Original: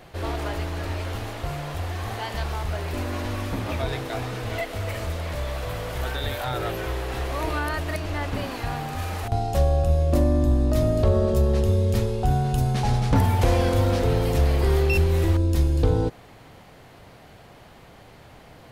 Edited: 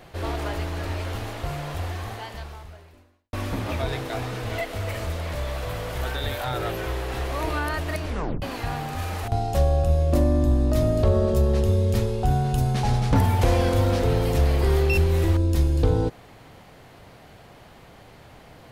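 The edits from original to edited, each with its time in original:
0:01.86–0:03.33: fade out quadratic
0:08.05: tape stop 0.37 s

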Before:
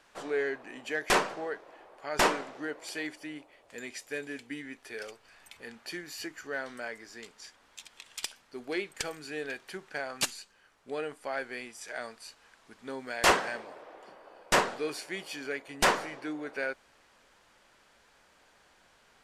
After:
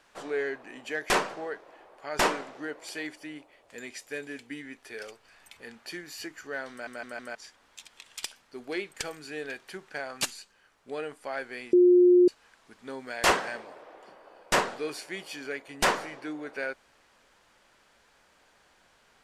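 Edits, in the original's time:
0:06.71: stutter in place 0.16 s, 4 plays
0:11.73–0:12.28: beep over 357 Hz −14.5 dBFS

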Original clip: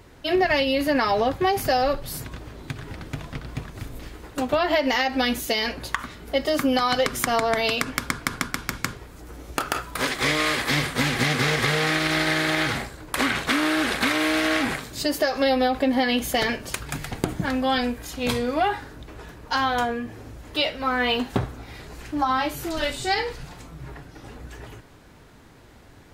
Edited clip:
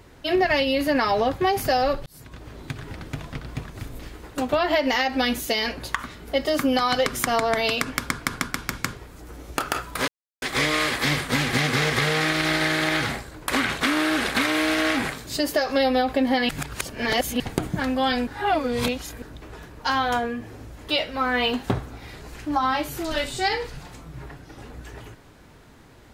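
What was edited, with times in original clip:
0:02.06–0:02.55: fade in
0:10.08: splice in silence 0.34 s
0:16.15–0:17.06: reverse
0:17.93–0:18.88: reverse

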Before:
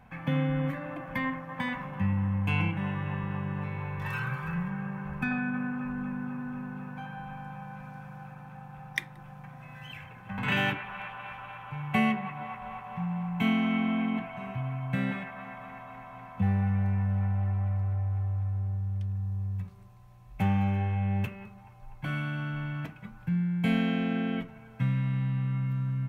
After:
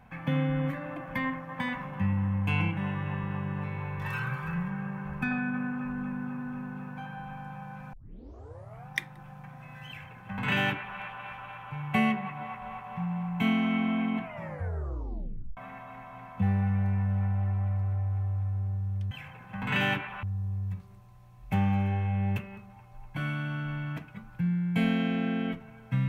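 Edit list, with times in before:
0:07.93: tape start 0.96 s
0:09.87–0:10.99: duplicate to 0:19.11
0:14.24: tape stop 1.33 s

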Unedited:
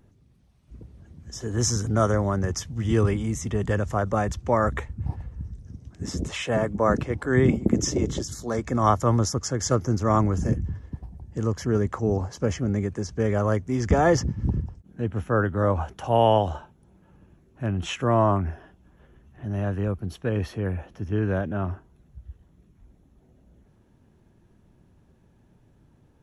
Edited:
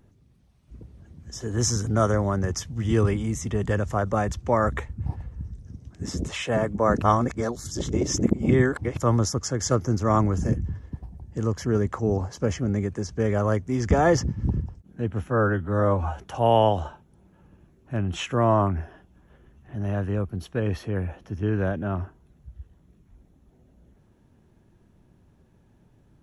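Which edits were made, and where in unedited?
0:07.02–0:08.97: reverse
0:15.28–0:15.89: time-stretch 1.5×

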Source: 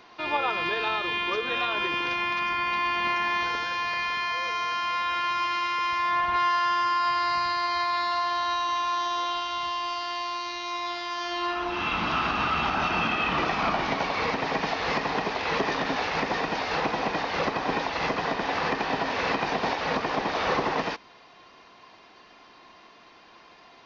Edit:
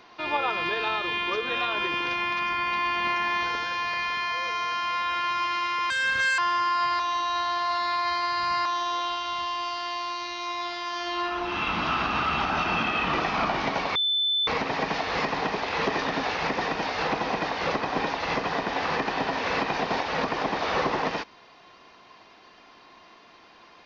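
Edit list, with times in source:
0:05.90–0:06.63: play speed 151%
0:07.24–0:08.90: reverse
0:14.20: insert tone 3,520 Hz −21.5 dBFS 0.52 s

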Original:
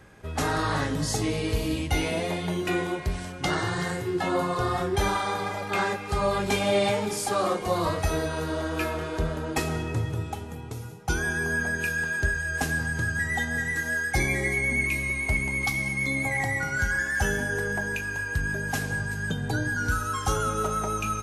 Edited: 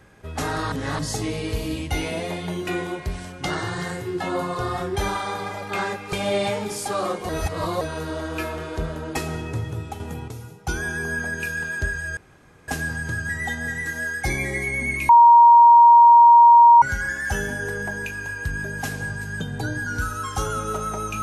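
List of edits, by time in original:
0:00.72–0:00.99: reverse
0:06.13–0:06.54: remove
0:07.70–0:08.22: reverse
0:10.41–0:10.69: clip gain +5.5 dB
0:12.58: splice in room tone 0.51 s
0:14.99–0:16.72: beep over 942 Hz −7 dBFS

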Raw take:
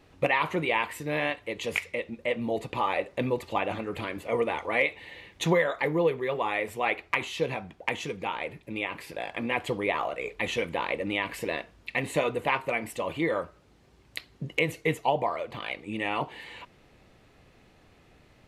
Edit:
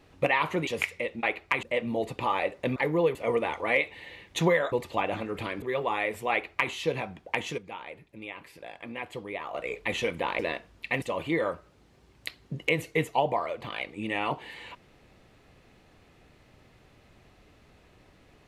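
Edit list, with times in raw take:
0:00.67–0:01.61: remove
0:03.30–0:04.20: swap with 0:05.77–0:06.16
0:06.85–0:07.25: duplicate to 0:02.17
0:08.12–0:10.08: clip gain −8.5 dB
0:10.93–0:11.43: remove
0:12.06–0:12.92: remove

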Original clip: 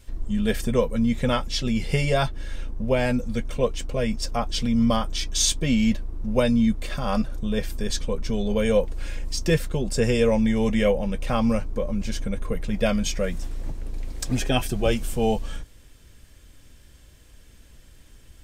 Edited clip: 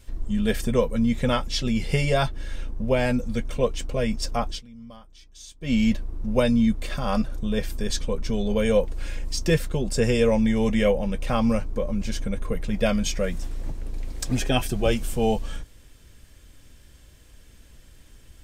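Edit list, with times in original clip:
0:04.47–0:05.75: duck −23 dB, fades 0.15 s

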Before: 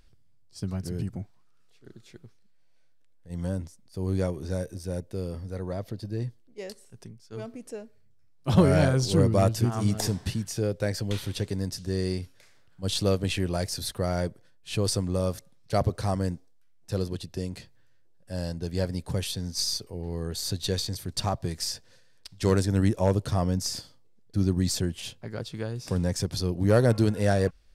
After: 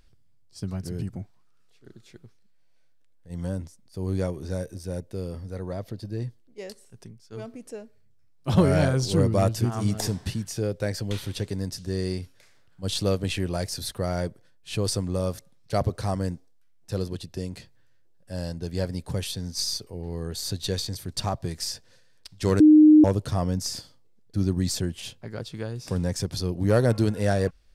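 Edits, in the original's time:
0:22.60–0:23.04: beep over 306 Hz −9.5 dBFS

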